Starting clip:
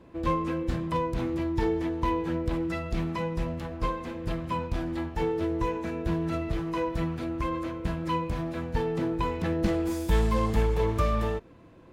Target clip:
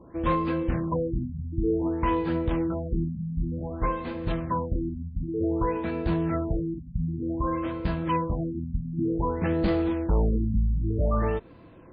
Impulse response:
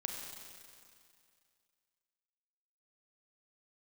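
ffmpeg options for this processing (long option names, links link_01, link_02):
-af "asoftclip=type=hard:threshold=-21dB,afftfilt=real='re*lt(b*sr/1024,250*pow(5000/250,0.5+0.5*sin(2*PI*0.54*pts/sr)))':imag='im*lt(b*sr/1024,250*pow(5000/250,0.5+0.5*sin(2*PI*0.54*pts/sr)))':win_size=1024:overlap=0.75,volume=3dB"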